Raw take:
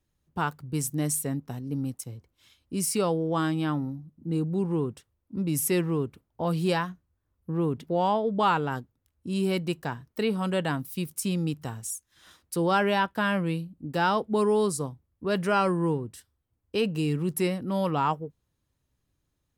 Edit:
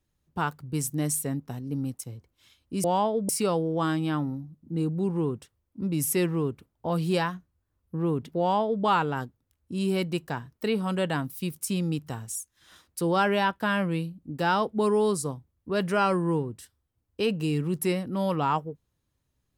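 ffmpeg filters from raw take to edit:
-filter_complex "[0:a]asplit=3[a][b][c];[a]atrim=end=2.842[d];[b]atrim=start=7.938:end=8.392[e];[c]atrim=start=2.838[f];[d][e]acrossfade=d=0.004:c1=hsin:c2=hsin[g];[g][f]acrossfade=d=0.004:c1=hsin:c2=hsin"

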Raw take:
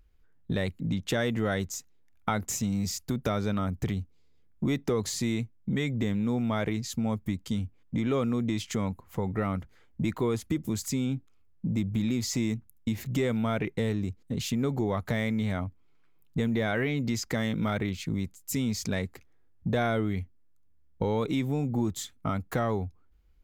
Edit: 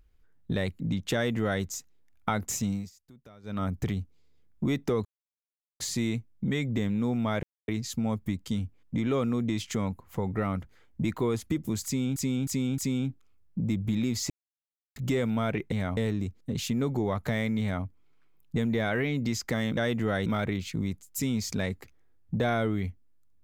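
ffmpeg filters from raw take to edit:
-filter_complex "[0:a]asplit=14[a][b][c][d][e][f][g][h][i][j][k][l][m][n];[a]atrim=end=2.9,asetpts=PTS-STARTPTS,afade=t=out:st=2.7:d=0.2:silence=0.0668344[o];[b]atrim=start=2.9:end=3.43,asetpts=PTS-STARTPTS,volume=-23.5dB[p];[c]atrim=start=3.43:end=5.05,asetpts=PTS-STARTPTS,afade=t=in:d=0.2:silence=0.0668344,afade=t=out:st=1.616:d=0.004:c=hsin,apad=pad_dur=0.75[q];[d]atrim=start=5.05:end=6.68,asetpts=PTS-STARTPTS,afade=t=in:d=0.004:c=hsin,afade=t=out:st=1.626:d=0.004:c=hsin,apad=pad_dur=0.25[r];[e]atrim=start=6.68:end=11.162,asetpts=PTS-STARTPTS,afade=t=in:d=0.004:c=hsin[s];[f]atrim=start=10.848:end=11.162[t];[g]atrim=start=10.848:end=11.162[u];[h]atrim=start=10.848:end=12.37,asetpts=PTS-STARTPTS,afade=t=out:st=1.518:d=0.004:c=hsin[v];[i]atrim=start=12.37:end=13.03,asetpts=PTS-STARTPTS,volume=0[w];[j]atrim=start=13.03:end=13.792,asetpts=PTS-STARTPTS,afade=t=in:d=0.004:c=hsin[x];[k]atrim=start=15.418:end=15.672[y];[l]atrim=start=13.788:end=17.592[z];[m]atrim=start=1.138:end=1.632[aa];[n]atrim=start=17.588[ab];[o][p][q][r][s]concat=n=5:v=0:a=1[ac];[ac][t]acrossfade=d=0.004:c1=hsin:c2=hsin[ad];[ad][u]acrossfade=d=0.004:c1=hsin:c2=hsin[ae];[v][w][x]concat=n=3:v=0:a=1[af];[ae][af]acrossfade=d=0.004:c1=hsin:c2=hsin[ag];[ag][y]acrossfade=d=0.004:c1=hsin:c2=hsin[ah];[ah][z]acrossfade=d=0.004:c1=hsin:c2=hsin[ai];[ai][aa]acrossfade=d=0.004:c1=hsin:c2=hsin[aj];[aj][ab]acrossfade=d=0.004:c1=hsin:c2=hsin"

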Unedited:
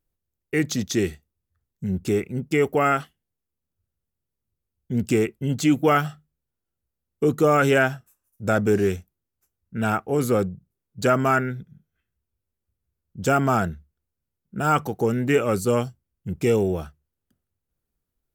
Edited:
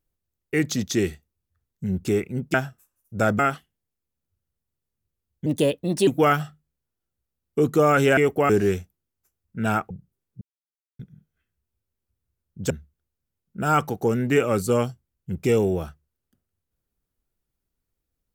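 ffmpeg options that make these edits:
-filter_complex "[0:a]asplit=11[a][b][c][d][e][f][g][h][i][j][k];[a]atrim=end=2.542[l];[b]atrim=start=7.818:end=8.672[m];[c]atrim=start=2.858:end=4.934[n];[d]atrim=start=4.93:end=5.72,asetpts=PTS-STARTPTS,asetrate=56889,aresample=44100[o];[e]atrim=start=5.716:end=7.822[p];[f]atrim=start=2.538:end=2.862[q];[g]atrim=start=8.668:end=10.082[r];[h]atrim=start=10.488:end=11,asetpts=PTS-STARTPTS,afade=t=out:st=0.508:d=0.004:c=hsin[s];[i]atrim=start=11:end=11.58,asetpts=PTS-STARTPTS,volume=0[t];[j]atrim=start=11.58:end=13.292,asetpts=PTS-STARTPTS,afade=t=in:d=0.004:c=hsin[u];[k]atrim=start=13.678[v];[l][m]acrossfade=d=0.004:c1=hsin:c2=hsin[w];[w][n]acrossfade=d=0.004:c1=hsin:c2=hsin[x];[x][o]acrossfade=d=0.004:c1=hsin:c2=hsin[y];[y][p]acrossfade=d=0.004:c1=hsin:c2=hsin[z];[z][q]acrossfade=d=0.004:c1=hsin:c2=hsin[aa];[aa][r]acrossfade=d=0.004:c1=hsin:c2=hsin[ab];[s][t][u]concat=n=3:v=0:a=1[ac];[ab][ac]acrossfade=d=0.004:c1=hsin:c2=hsin[ad];[ad][v]acrossfade=d=0.004:c1=hsin:c2=hsin"

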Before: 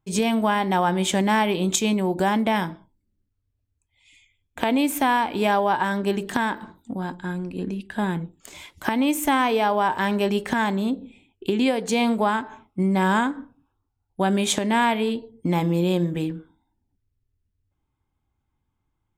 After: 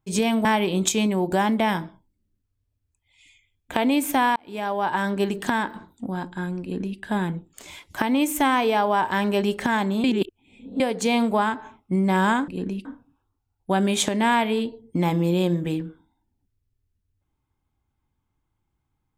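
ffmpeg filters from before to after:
-filter_complex "[0:a]asplit=7[a][b][c][d][e][f][g];[a]atrim=end=0.452[h];[b]atrim=start=1.318:end=5.23,asetpts=PTS-STARTPTS,afade=t=out:st=3.908:d=0.004:c=hsin[i];[c]atrim=start=5.23:end=10.912,asetpts=PTS-STARTPTS,afade=t=in:d=0.67[j];[d]atrim=start=10.908:end=11.672,asetpts=PTS-STARTPTS,areverse[k];[e]atrim=start=11.668:end=13.352[l];[f]atrim=start=7.488:end=7.862[m];[g]atrim=start=13.348[n];[i][j]concat=n=2:v=0:a=1[o];[h][o]acrossfade=d=0.004:c1=hsin:c2=hsin[p];[p][k]acrossfade=d=0.004:c1=hsin:c2=hsin[q];[q][l]acrossfade=d=0.004:c1=hsin:c2=hsin[r];[r][m]acrossfade=d=0.004:c1=hsin:c2=hsin[s];[s][n]acrossfade=d=0.004:c1=hsin:c2=hsin"

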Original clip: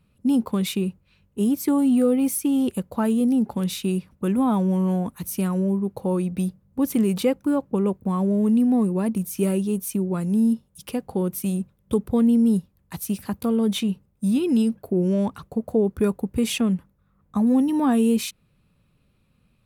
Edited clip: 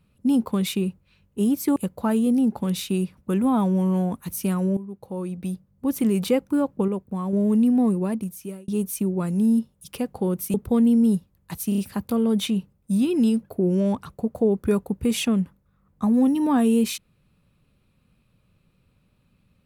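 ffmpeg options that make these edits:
-filter_complex "[0:a]asplit=10[a][b][c][d][e][f][g][h][i][j];[a]atrim=end=1.762[k];[b]atrim=start=2.698:end=5.71,asetpts=PTS-STARTPTS,afade=t=out:st=3.008:d=0.004:c=hsin:silence=0.211349[l];[c]atrim=start=5.71:end=7.822,asetpts=PTS-STARTPTS,afade=t=in:d=1.45:silence=0.211349[m];[d]atrim=start=7.818:end=8.272,asetpts=PTS-STARTPTS,volume=-4.5dB[n];[e]atrim=start=8.268:end=9.62,asetpts=PTS-STARTPTS,afade=t=out:st=0.612:d=0.74[o];[f]atrim=start=9.62:end=11.482,asetpts=PTS-STARTPTS,afade=t=in:d=0.004:c=hsin[p];[g]atrim=start=11.958:end=13.142[q];[h]atrim=start=13.108:end=13.142[r];[i]atrim=start=13.108:end=13.142[s];[j]atrim=start=13.108[t];[l][m]concat=n=2:v=0:a=1[u];[k][u]acrossfade=d=0.004:c1=hsin:c2=hsin[v];[v][n]acrossfade=d=0.004:c1=hsin:c2=hsin[w];[o][p]concat=n=2:v=0:a=1[x];[w][x]acrossfade=d=0.004:c1=hsin:c2=hsin[y];[y][q]acrossfade=d=0.004:c1=hsin:c2=hsin[z];[z][r]acrossfade=d=0.004:c1=hsin:c2=hsin[aa];[aa][s]acrossfade=d=0.004:c1=hsin:c2=hsin[ab];[ab][t]acrossfade=d=0.004:c1=hsin:c2=hsin"

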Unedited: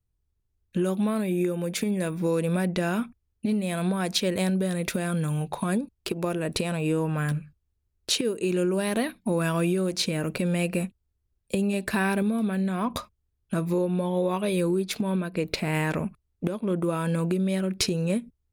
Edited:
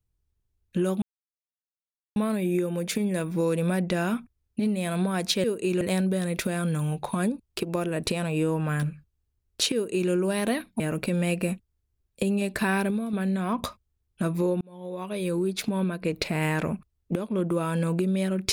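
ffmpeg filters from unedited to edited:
-filter_complex "[0:a]asplit=7[a][b][c][d][e][f][g];[a]atrim=end=1.02,asetpts=PTS-STARTPTS,afade=t=out:st=1.016:d=0.004:c=hsin,apad=pad_dur=1.14[h];[b]atrim=start=1.02:end=4.302,asetpts=PTS-STARTPTS,afade=t=in:d=0.004:c=hsin[i];[c]atrim=start=8.228:end=8.602[j];[d]atrim=start=4.298:end=9.292[k];[e]atrim=start=10.118:end=12.45,asetpts=PTS-STARTPTS,afade=t=out:st=2.002:d=0.33:silence=0.473151[l];[f]atrim=start=12.45:end=13.93,asetpts=PTS-STARTPTS,afade=t=in:d=0.004:c=hsin:silence=0.473151,afade=t=out:st=1.476:d=0.004:c=hsin[m];[g]atrim=start=13.93,asetpts=PTS-STARTPTS,afade=t=in:d=0.97[n];[h][i]concat=n=2:v=0:a=1[o];[o][j]acrossfade=d=0.004:c1=hsin:c2=hsin[p];[p][k]acrossfade=d=0.004:c1=hsin:c2=hsin[q];[l][m][n]concat=n=3:v=0:a=1[r];[q][r]acrossfade=d=0.004:c1=hsin:c2=hsin"

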